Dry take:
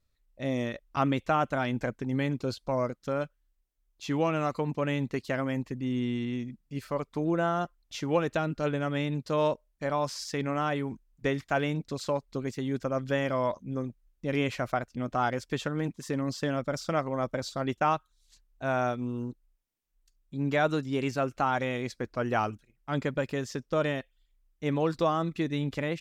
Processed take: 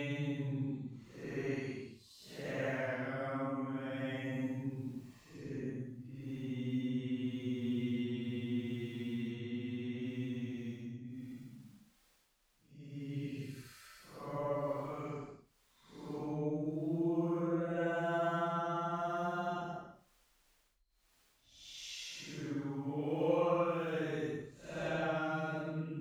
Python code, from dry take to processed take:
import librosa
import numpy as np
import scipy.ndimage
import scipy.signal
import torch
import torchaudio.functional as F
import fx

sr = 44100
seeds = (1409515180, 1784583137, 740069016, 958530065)

y = fx.dmg_crackle(x, sr, seeds[0], per_s=20.0, level_db=-39.0)
y = fx.paulstretch(y, sr, seeds[1], factor=7.3, window_s=0.1, from_s=4.95)
y = F.gain(torch.from_numpy(y), -8.5).numpy()